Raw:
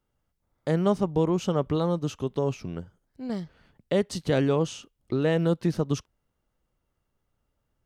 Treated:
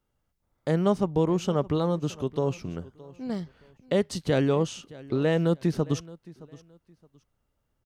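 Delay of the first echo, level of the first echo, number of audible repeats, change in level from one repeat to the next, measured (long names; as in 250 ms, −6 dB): 619 ms, −20.5 dB, 2, −11.5 dB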